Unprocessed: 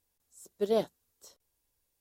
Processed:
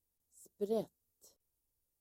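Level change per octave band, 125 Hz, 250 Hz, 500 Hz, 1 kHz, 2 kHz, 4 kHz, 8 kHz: −5.0 dB, −5.5 dB, −8.0 dB, −10.5 dB, below −15 dB, −14.0 dB, −8.0 dB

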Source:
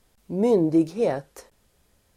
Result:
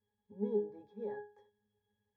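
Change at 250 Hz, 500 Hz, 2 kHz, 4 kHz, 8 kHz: −20.5 dB, −15.0 dB, −16.0 dB, below −25 dB, can't be measured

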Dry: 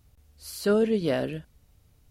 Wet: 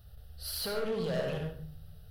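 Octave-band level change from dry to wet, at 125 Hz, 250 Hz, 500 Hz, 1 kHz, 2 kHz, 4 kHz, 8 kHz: −2.0, −11.5, −8.0, −5.0, −5.0, +1.0, −1.0 decibels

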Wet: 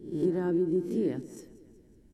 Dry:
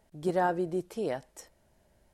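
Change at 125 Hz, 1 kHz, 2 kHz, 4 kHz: +4.0 dB, −15.5 dB, −10.0 dB, can't be measured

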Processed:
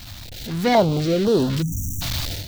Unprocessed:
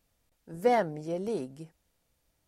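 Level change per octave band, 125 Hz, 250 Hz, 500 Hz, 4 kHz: +20.0, +15.0, +9.5, +23.0 decibels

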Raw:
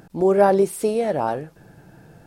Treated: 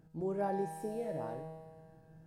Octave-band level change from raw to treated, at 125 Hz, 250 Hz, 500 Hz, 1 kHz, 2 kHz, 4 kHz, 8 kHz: −12.5 dB, −16.0 dB, −18.5 dB, −16.5 dB, −19.0 dB, below −20 dB, −21.5 dB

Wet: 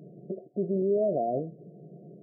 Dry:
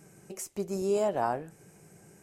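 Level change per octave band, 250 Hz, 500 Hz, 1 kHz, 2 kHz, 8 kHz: +4.5 dB, +2.5 dB, −3.0 dB, below −40 dB, below −40 dB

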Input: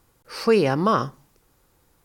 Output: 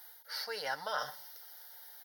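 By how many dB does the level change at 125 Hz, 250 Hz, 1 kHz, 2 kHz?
−34.5, −38.0, −14.5, −7.0 decibels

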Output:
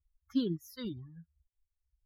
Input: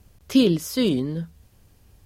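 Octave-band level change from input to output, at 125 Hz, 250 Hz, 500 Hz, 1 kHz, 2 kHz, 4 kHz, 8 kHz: −14.5, −15.0, −18.5, −18.0, −20.5, −18.0, −22.5 decibels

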